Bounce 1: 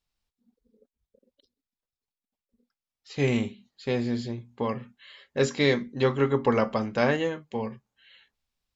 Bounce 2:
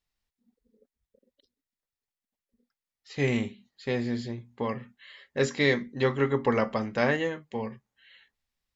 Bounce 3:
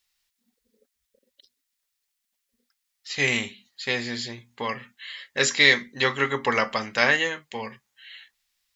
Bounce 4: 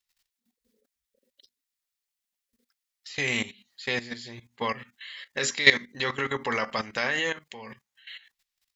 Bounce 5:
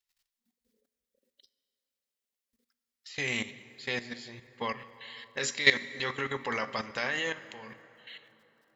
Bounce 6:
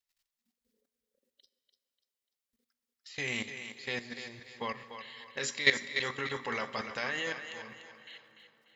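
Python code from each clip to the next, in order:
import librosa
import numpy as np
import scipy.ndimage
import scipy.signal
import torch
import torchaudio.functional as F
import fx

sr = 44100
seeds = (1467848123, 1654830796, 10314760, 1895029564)

y1 = fx.peak_eq(x, sr, hz=1900.0, db=7.0, octaves=0.25)
y1 = y1 * librosa.db_to_amplitude(-2.0)
y2 = fx.tilt_shelf(y1, sr, db=-10.0, hz=970.0)
y2 = y2 * librosa.db_to_amplitude(4.5)
y3 = fx.level_steps(y2, sr, step_db=15)
y3 = y3 * librosa.db_to_amplitude(3.0)
y4 = fx.rev_plate(y3, sr, seeds[0], rt60_s=3.7, hf_ratio=0.5, predelay_ms=0, drr_db=14.5)
y4 = y4 * librosa.db_to_amplitude(-4.5)
y5 = fx.echo_thinned(y4, sr, ms=294, feedback_pct=38, hz=420.0, wet_db=-8.5)
y5 = y5 * librosa.db_to_amplitude(-3.0)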